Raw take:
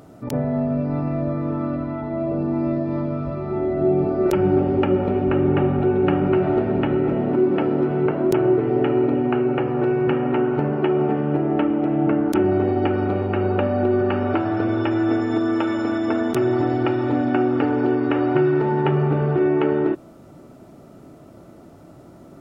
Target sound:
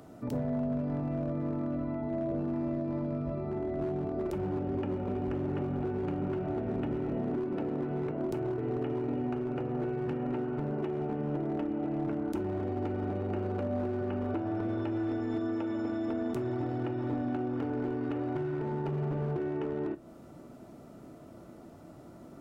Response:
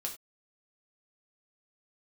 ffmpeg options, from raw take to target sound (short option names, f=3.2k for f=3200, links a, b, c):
-filter_complex "[0:a]acrossover=split=120|710[a][b][c];[a]acompressor=threshold=-31dB:ratio=4[d];[b]acompressor=threshold=-26dB:ratio=4[e];[c]acompressor=threshold=-44dB:ratio=4[f];[d][e][f]amix=inputs=3:normalize=0,asoftclip=type=hard:threshold=-21dB,asplit=2[g][h];[1:a]atrim=start_sample=2205,asetrate=66150,aresample=44100[i];[h][i]afir=irnorm=-1:irlink=0,volume=-2dB[j];[g][j]amix=inputs=2:normalize=0,volume=-8.5dB"